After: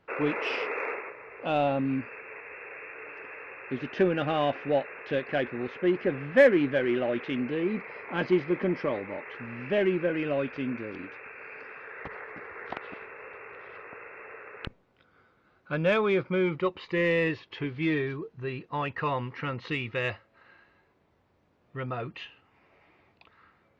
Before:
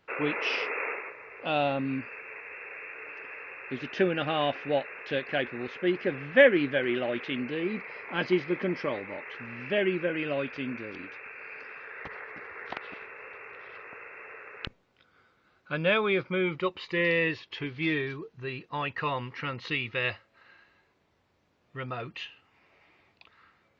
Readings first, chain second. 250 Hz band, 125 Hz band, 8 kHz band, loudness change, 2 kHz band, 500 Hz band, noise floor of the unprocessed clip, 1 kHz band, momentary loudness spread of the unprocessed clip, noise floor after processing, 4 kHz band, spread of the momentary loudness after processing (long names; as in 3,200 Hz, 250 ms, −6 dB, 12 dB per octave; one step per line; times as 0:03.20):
+2.5 dB, +3.0 dB, can't be measured, +1.0 dB, −2.5 dB, +1.5 dB, −69 dBFS, +1.0 dB, 16 LU, −67 dBFS, −4.5 dB, 17 LU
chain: high-shelf EQ 2,300 Hz −11 dB
in parallel at −6 dB: soft clipping −26 dBFS, distortion −8 dB